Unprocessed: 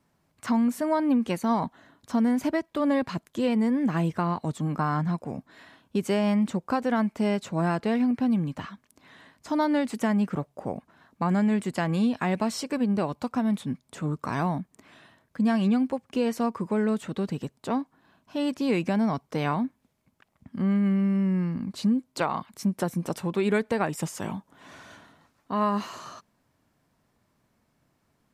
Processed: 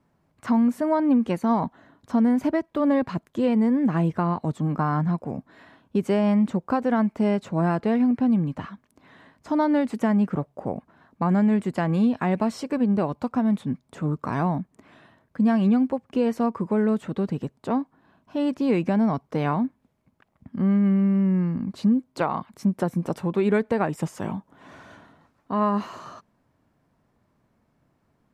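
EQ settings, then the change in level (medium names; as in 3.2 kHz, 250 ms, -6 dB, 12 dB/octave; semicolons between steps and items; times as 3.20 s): treble shelf 2.4 kHz -11.5 dB; +3.5 dB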